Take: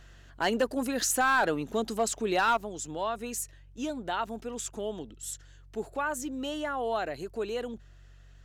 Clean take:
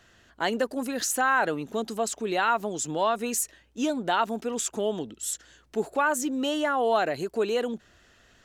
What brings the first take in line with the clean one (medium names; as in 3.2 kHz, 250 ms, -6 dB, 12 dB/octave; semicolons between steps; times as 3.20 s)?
clip repair -18.5 dBFS; de-hum 46.8 Hz, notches 3; trim 0 dB, from 2.57 s +7 dB